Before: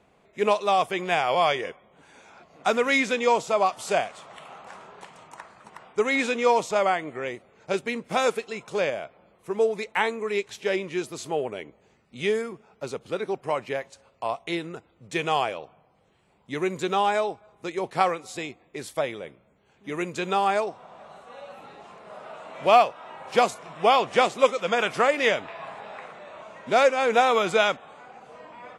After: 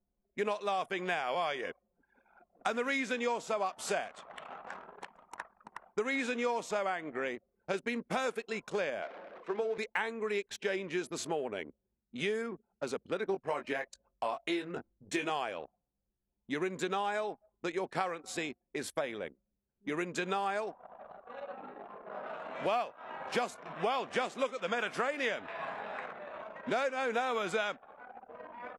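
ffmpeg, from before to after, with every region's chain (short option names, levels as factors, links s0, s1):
-filter_complex "[0:a]asettb=1/sr,asplit=3[s0][s1][s2];[s0]atrim=end=9.024[s3];[s1]atrim=start=9.02:end=9.78,asetpts=PTS-STARTPTS,afade=t=in:d=0.004:c=qsin,afade=t=out:st=0.756:d=0.004:c=qsin,aeval=exprs='val(0)+0.5*0.0106*sgn(val(0))':c=same,highpass=300,lowpass=4600,bandreject=f=50:t=h:w=6,bandreject=f=100:t=h:w=6,bandreject=f=150:t=h:w=6,bandreject=f=200:t=h:w=6,bandreject=f=250:t=h:w=6,bandreject=f=300:t=h:w=6,bandreject=f=350:t=h:w=6,bandreject=f=400:t=h:w=6,bandreject=f=450:t=h:w=6[s4];[s2]atrim=start=9.776[s5];[s3][s4]acrossfade=d=0.004:c1=hsin:c2=qsin[s6];[s6][s5]acrossfade=d=0.004:c1=qsin:c2=hsin,asettb=1/sr,asplit=3[s7][s8][s9];[s7]atrim=end=13.294[s10];[s8]atrim=start=13.29:end=15.3,asetpts=PTS-STARTPTS,afade=t=in:d=0.004:c=qsin,afade=t=out:st=2.006:d=0.004:c=qsin,aphaser=in_gain=1:out_gain=1:delay=3.3:decay=0.39:speed=1.3:type=sinusoidal,asplit=2[s11][s12];[s12]adelay=21,volume=0.531[s13];[s11][s13]amix=inputs=2:normalize=0,atrim=end_sample=88641[s14];[s9]atrim=start=15.296[s15];[s10][s14]acrossfade=d=0.004:c1=hsin:c2=qsin[s16];[s16][s15]acrossfade=d=0.004:c1=qsin:c2=hsin,asettb=1/sr,asplit=3[s17][s18][s19];[s17]atrim=end=21.434[s20];[s18]atrim=start=21.43:end=22.27,asetpts=PTS-STARTPTS,afade=t=in:d=0.004:c=qsin,afade=t=out:st=0.836:d=0.004:c=qsin,highpass=270,aemphasis=mode=reproduction:type=bsi,asplit=2[s21][s22];[s22]adelay=20,volume=0.473[s23];[s21][s23]amix=inputs=2:normalize=0,atrim=end_sample=37044[s24];[s19]atrim=start=22.266[s25];[s20][s24]acrossfade=d=0.004:c1=hsin:c2=qsin[s26];[s26][s25]acrossfade=d=0.004:c1=qsin:c2=hsin,anlmdn=0.1,equalizer=f=125:t=o:w=0.33:g=-11,equalizer=f=250:t=o:w=0.33:g=4,equalizer=f=1600:t=o:w=0.33:g=6,acompressor=threshold=0.0316:ratio=4,volume=0.841"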